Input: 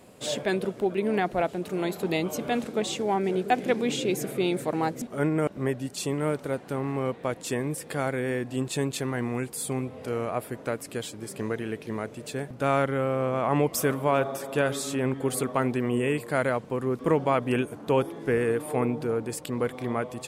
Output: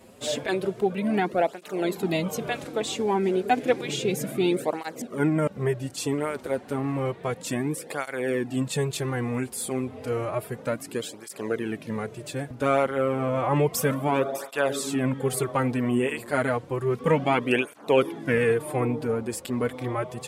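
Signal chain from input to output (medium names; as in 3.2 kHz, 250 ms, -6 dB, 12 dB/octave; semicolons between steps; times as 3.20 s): 16.85–18.54 s: dynamic bell 2.6 kHz, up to +7 dB, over -44 dBFS, Q 0.83; cancelling through-zero flanger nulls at 0.31 Hz, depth 7 ms; trim +4 dB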